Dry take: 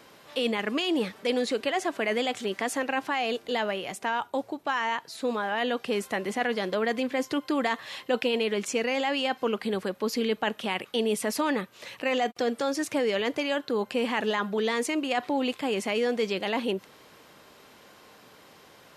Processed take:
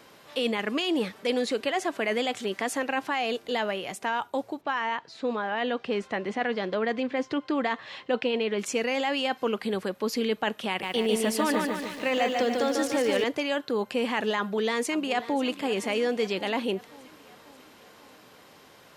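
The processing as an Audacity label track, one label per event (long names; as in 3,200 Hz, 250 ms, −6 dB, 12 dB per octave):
4.610000	8.590000	high-frequency loss of the air 130 metres
10.680000	13.240000	feedback echo at a low word length 146 ms, feedback 55%, word length 9 bits, level −3 dB
14.370000	15.450000	delay throw 540 ms, feedback 60%, level −15 dB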